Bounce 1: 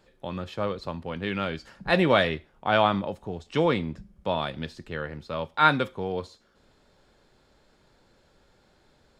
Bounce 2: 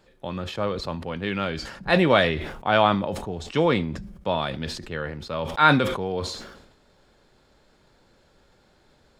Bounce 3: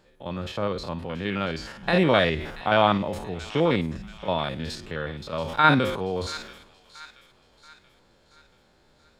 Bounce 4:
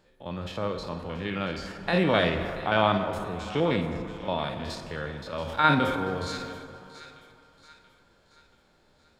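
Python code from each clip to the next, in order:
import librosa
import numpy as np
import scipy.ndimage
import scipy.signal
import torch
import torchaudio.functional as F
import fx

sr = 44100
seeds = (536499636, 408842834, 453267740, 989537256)

y1 = fx.sustainer(x, sr, db_per_s=58.0)
y1 = F.gain(torch.from_numpy(y1), 2.0).numpy()
y2 = fx.spec_steps(y1, sr, hold_ms=50)
y2 = fx.echo_wet_highpass(y2, sr, ms=681, feedback_pct=46, hz=1800.0, wet_db=-14)
y3 = fx.rev_plate(y2, sr, seeds[0], rt60_s=2.9, hf_ratio=0.45, predelay_ms=0, drr_db=6.5)
y3 = F.gain(torch.from_numpy(y3), -3.5).numpy()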